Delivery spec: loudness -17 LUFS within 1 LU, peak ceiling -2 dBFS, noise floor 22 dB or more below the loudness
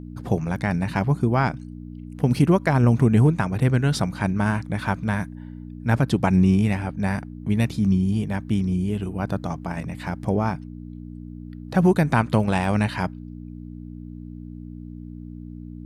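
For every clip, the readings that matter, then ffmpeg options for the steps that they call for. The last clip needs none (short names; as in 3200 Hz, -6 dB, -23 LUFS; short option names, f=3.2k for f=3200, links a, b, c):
hum 60 Hz; harmonics up to 300 Hz; hum level -37 dBFS; loudness -22.5 LUFS; peak -6.0 dBFS; loudness target -17.0 LUFS
-> -af "bandreject=f=60:t=h:w=4,bandreject=f=120:t=h:w=4,bandreject=f=180:t=h:w=4,bandreject=f=240:t=h:w=4,bandreject=f=300:t=h:w=4"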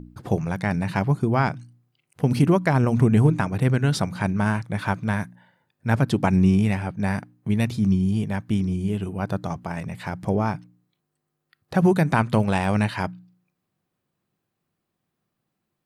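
hum none; loudness -23.0 LUFS; peak -6.0 dBFS; loudness target -17.0 LUFS
-> -af "volume=6dB,alimiter=limit=-2dB:level=0:latency=1"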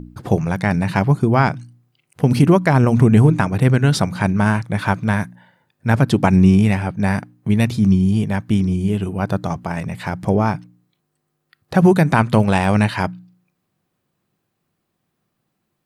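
loudness -17.0 LUFS; peak -2.0 dBFS; noise floor -74 dBFS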